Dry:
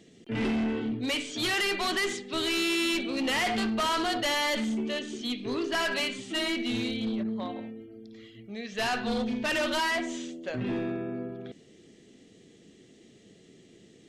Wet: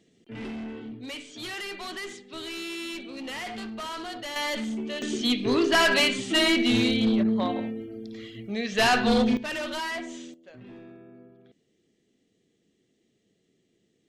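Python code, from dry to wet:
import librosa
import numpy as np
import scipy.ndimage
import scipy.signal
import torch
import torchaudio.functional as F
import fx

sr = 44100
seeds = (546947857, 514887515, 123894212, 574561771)

y = fx.gain(x, sr, db=fx.steps((0.0, -8.0), (4.36, -1.5), (5.02, 8.0), (9.37, -4.0), (10.34, -15.0)))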